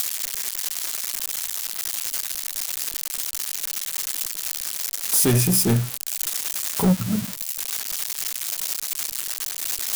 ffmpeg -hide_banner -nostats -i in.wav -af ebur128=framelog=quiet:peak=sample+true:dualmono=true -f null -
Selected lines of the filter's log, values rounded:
Integrated loudness:
  I:         -20.4 LUFS
  Threshold: -30.4 LUFS
Loudness range:
  LRA:         4.3 LU
  Threshold: -40.0 LUFS
  LRA low:   -22.4 LUFS
  LRA high:  -18.0 LUFS
Sample peak:
  Peak:      -12.9 dBFS
True peak:
  Peak:      -10.3 dBFS